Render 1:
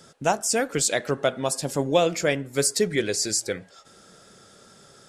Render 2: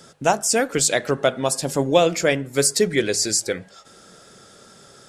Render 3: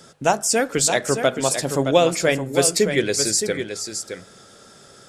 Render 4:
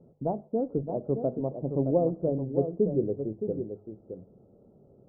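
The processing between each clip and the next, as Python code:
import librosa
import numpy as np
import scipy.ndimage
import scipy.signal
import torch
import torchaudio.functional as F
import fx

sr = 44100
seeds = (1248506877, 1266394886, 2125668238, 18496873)

y1 = fx.hum_notches(x, sr, base_hz=50, count=4)
y1 = y1 * librosa.db_to_amplitude(4.0)
y2 = y1 + 10.0 ** (-8.0 / 20.0) * np.pad(y1, (int(618 * sr / 1000.0), 0))[:len(y1)]
y3 = scipy.ndimage.gaussian_filter1d(y2, 15.0, mode='constant')
y3 = y3 * librosa.db_to_amplitude(-3.0)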